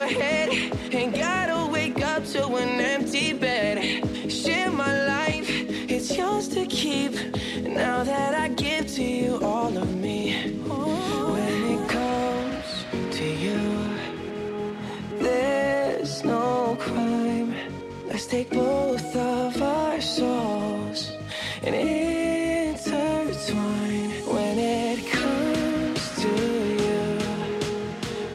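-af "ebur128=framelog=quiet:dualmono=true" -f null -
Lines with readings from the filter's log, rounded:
Integrated loudness:
  I:         -22.5 LUFS
  Threshold: -32.5 LUFS
Loudness range:
  LRA:         2.1 LU
  Threshold: -42.5 LUFS
  LRA low:   -23.4 LUFS
  LRA high:  -21.3 LUFS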